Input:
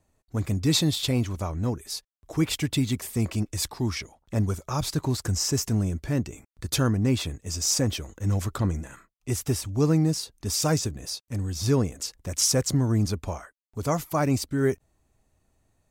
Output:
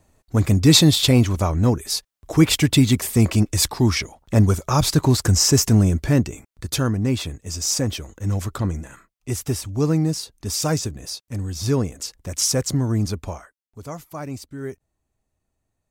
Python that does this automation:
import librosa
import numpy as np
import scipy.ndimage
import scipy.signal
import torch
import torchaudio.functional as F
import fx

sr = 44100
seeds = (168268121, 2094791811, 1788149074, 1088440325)

y = fx.gain(x, sr, db=fx.line((6.07, 9.5), (6.73, 2.0), (13.25, 2.0), (13.89, -8.0)))